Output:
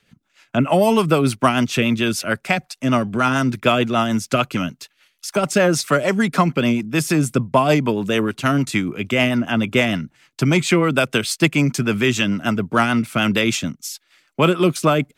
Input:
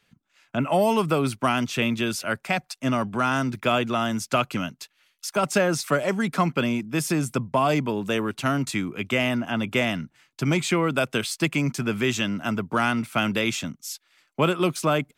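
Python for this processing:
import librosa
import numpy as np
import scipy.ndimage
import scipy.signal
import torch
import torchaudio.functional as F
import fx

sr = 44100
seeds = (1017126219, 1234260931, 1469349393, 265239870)

y = fx.rotary(x, sr, hz=6.7)
y = F.gain(torch.from_numpy(y), 8.0).numpy()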